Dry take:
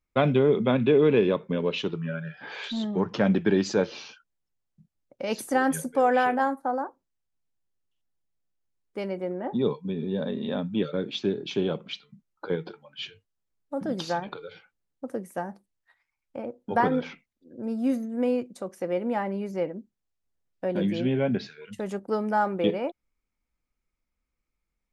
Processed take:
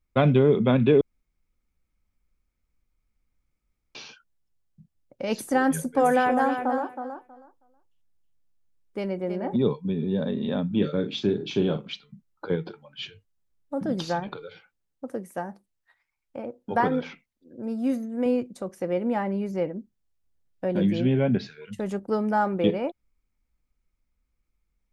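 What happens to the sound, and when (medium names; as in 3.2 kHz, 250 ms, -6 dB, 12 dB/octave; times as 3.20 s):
1.01–3.95 s: room tone
5.65–9.56 s: feedback delay 320 ms, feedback 17%, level -8 dB
10.67–11.89 s: doubling 39 ms -8 dB
14.43–18.26 s: bass shelf 220 Hz -7 dB
whole clip: bass shelf 170 Hz +9 dB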